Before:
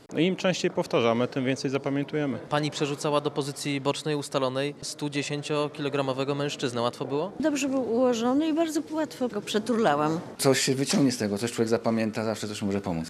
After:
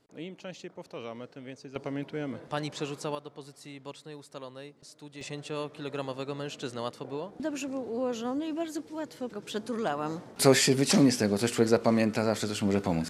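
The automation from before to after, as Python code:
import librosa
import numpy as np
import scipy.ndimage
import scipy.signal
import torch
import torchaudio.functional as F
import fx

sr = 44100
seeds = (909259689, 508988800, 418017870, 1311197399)

y = fx.gain(x, sr, db=fx.steps((0.0, -17.0), (1.76, -7.0), (3.15, -16.5), (5.21, -8.0), (10.36, 1.0)))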